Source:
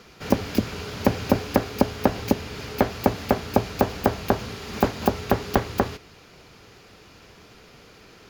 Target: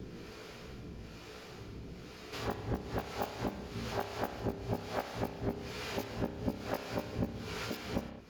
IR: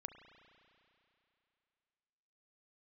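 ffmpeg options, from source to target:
-filter_complex "[0:a]areverse,acrossover=split=430|750|5900[a][b][c][d];[a]acompressor=mode=upward:threshold=-37dB:ratio=2.5[e];[e][b][c][d]amix=inputs=4:normalize=0,flanger=delay=16:depth=2.3:speed=1.4,acompressor=threshold=-36dB:ratio=3,acrossover=split=430[f][g];[f]aeval=exprs='val(0)*(1-0.7/2+0.7/2*cos(2*PI*1.1*n/s))':c=same[h];[g]aeval=exprs='val(0)*(1-0.7/2-0.7/2*cos(2*PI*1.1*n/s))':c=same[i];[h][i]amix=inputs=2:normalize=0[j];[1:a]atrim=start_sample=2205,afade=t=out:st=0.3:d=0.01,atrim=end_sample=13671,asetrate=48510,aresample=44100[k];[j][k]afir=irnorm=-1:irlink=0,volume=9.5dB"

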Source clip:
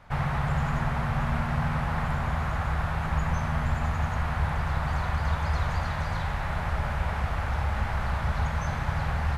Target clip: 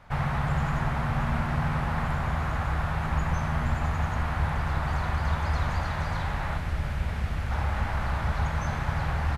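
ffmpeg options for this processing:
-filter_complex "[0:a]asettb=1/sr,asplit=3[a][b][c];[a]atrim=end=6.574[d];[b]atrim=start=6.57:end=7.51,asetpts=PTS-STARTPTS,afade=t=in:d=0.004:c=qsin,afade=t=out:st=0.936:d=0.004:c=qsin,equalizer=f=930:w=0.78:g=-8.5[e];[c]atrim=start=7.506[f];[d][e]acrossfade=d=0.004:c1=hsin:c2=qsin[g];[g][f]acrossfade=d=0.004:c1=qsin:c2=hsin,asplit=6[h][i][j][k][l][m];[i]adelay=116,afreqshift=76,volume=-20dB[n];[j]adelay=232,afreqshift=152,volume=-24.2dB[o];[k]adelay=348,afreqshift=228,volume=-28.3dB[p];[l]adelay=464,afreqshift=304,volume=-32.5dB[q];[m]adelay=580,afreqshift=380,volume=-36.6dB[r];[h][n][o][p][q][r]amix=inputs=6:normalize=0"

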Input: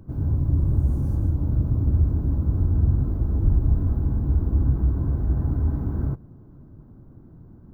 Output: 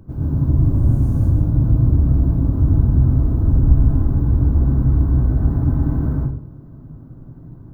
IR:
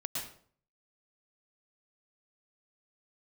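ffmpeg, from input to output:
-filter_complex "[1:a]atrim=start_sample=2205[a];[0:a][a]afir=irnorm=-1:irlink=0,volume=4.5dB"

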